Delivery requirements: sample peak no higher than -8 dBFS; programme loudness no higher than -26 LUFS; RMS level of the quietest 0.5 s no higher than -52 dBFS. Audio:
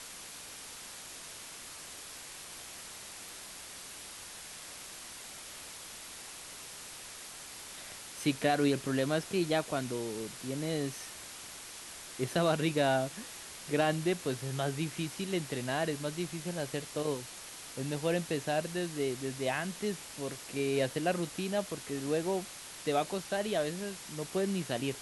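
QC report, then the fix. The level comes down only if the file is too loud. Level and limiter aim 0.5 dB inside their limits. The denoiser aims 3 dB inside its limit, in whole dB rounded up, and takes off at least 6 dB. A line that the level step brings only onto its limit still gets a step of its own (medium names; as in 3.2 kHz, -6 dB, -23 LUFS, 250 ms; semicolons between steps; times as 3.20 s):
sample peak -14.5 dBFS: pass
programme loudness -35.5 LUFS: pass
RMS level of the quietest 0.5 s -47 dBFS: fail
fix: noise reduction 8 dB, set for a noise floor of -47 dBFS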